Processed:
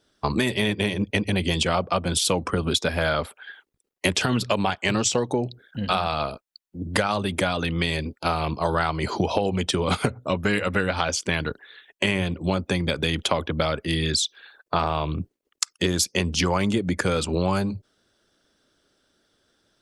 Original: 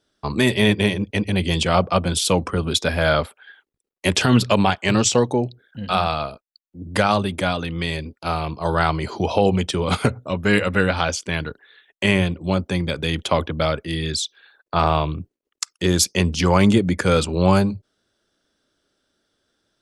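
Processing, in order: harmonic-percussive split percussive +4 dB; compressor, threshold -21 dBFS, peak gain reduction 12 dB; gain +1.5 dB

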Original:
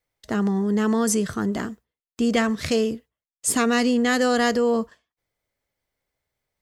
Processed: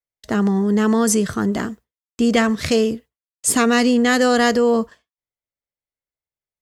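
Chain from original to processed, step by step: gate with hold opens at -47 dBFS; gain +4.5 dB

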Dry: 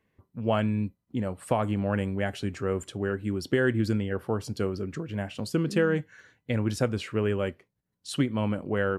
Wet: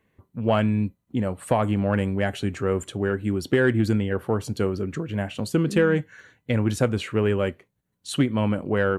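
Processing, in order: bell 5100 Hz -8.5 dB 0.23 oct; soft clip -12 dBFS, distortion -26 dB; gain +5 dB

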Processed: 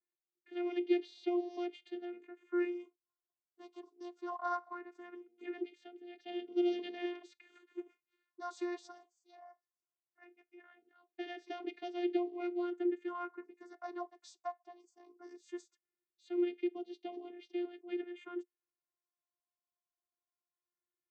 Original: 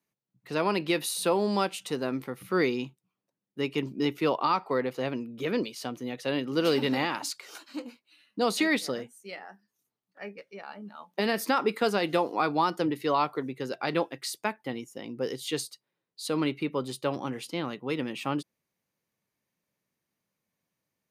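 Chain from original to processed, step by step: phaser stages 4, 0.19 Hz, lowest notch 390–1200 Hz; vocoder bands 16, saw 352 Hz; gain -6 dB

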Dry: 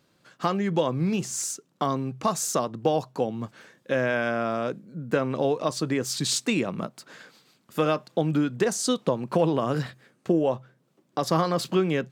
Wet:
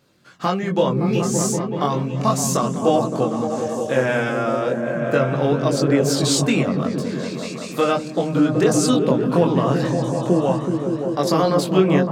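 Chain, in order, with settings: repeats that get brighter 0.189 s, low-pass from 200 Hz, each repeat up 1 oct, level 0 dB; chorus voices 2, 0.17 Hz, delay 22 ms, depth 1.3 ms; gain +8 dB

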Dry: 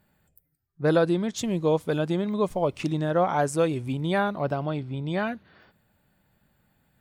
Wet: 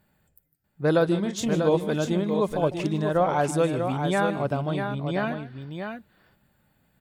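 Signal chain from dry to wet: 1.05–1.75 doubler 30 ms -6.5 dB; on a send: tapped delay 0.154/0.642 s -14.5/-6.5 dB

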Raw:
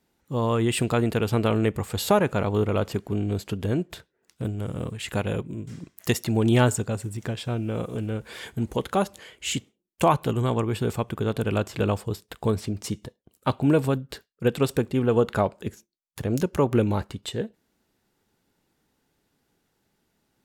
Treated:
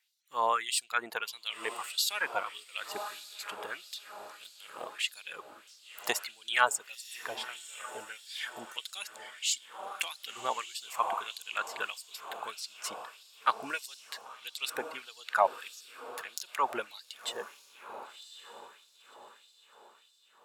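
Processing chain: reverb removal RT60 1.9 s; diffused feedback echo 1.064 s, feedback 43%, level -11.5 dB; LFO high-pass sine 1.6 Hz 770–4600 Hz; gain -2.5 dB

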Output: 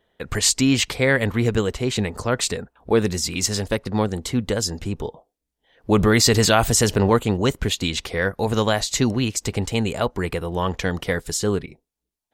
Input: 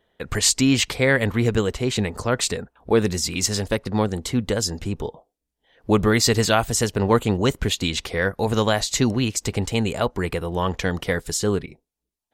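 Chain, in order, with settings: 5.92–7.1 fast leveller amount 50%

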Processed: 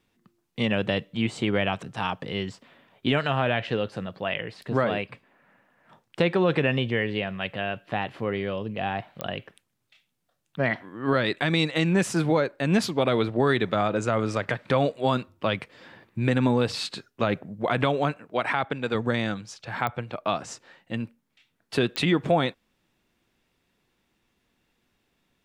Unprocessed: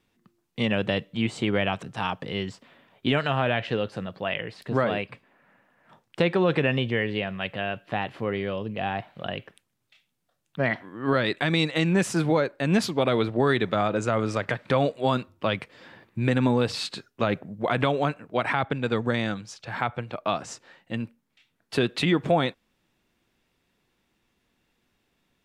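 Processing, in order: 18.17–18.95 low shelf 170 Hz -9 dB; pops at 9.21/19.87/21.96, -14 dBFS

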